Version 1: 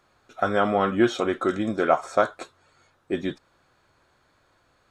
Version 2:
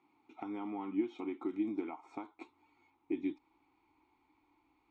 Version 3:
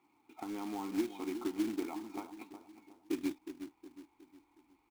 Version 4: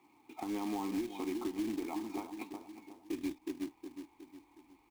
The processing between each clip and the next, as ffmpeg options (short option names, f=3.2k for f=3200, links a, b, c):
-filter_complex "[0:a]asubboost=boost=10.5:cutoff=52,acompressor=threshold=-30dB:ratio=6,asplit=3[a][b][c];[a]bandpass=f=300:t=q:w=8,volume=0dB[d];[b]bandpass=f=870:t=q:w=8,volume=-6dB[e];[c]bandpass=f=2.24k:t=q:w=8,volume=-9dB[f];[d][e][f]amix=inputs=3:normalize=0,volume=6dB"
-filter_complex "[0:a]asplit=2[a][b];[b]adelay=364,lowpass=f=1.1k:p=1,volume=-9.5dB,asplit=2[c][d];[d]adelay=364,lowpass=f=1.1k:p=1,volume=0.45,asplit=2[e][f];[f]adelay=364,lowpass=f=1.1k:p=1,volume=0.45,asplit=2[g][h];[h]adelay=364,lowpass=f=1.1k:p=1,volume=0.45,asplit=2[i][j];[j]adelay=364,lowpass=f=1.1k:p=1,volume=0.45[k];[c][e][g][i][k]amix=inputs=5:normalize=0[l];[a][l]amix=inputs=2:normalize=0,acrusher=bits=3:mode=log:mix=0:aa=0.000001"
-filter_complex "[0:a]acrossover=split=100[a][b];[b]alimiter=level_in=9.5dB:limit=-24dB:level=0:latency=1:release=231,volume=-9.5dB[c];[a][c]amix=inputs=2:normalize=0,bandreject=f=1.4k:w=5.6,volume=6dB"